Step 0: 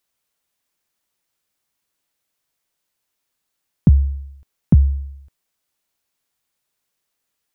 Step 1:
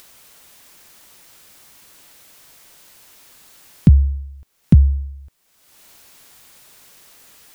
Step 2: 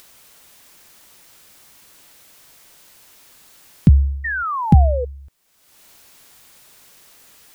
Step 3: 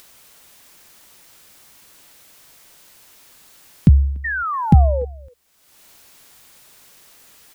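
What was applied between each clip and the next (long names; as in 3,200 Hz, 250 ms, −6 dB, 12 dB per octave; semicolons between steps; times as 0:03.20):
upward compression, threshold −28 dBFS; level +2 dB
sound drawn into the spectrogram fall, 0:04.24–0:05.05, 470–1,900 Hz −22 dBFS; level −1 dB
far-end echo of a speakerphone 290 ms, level −25 dB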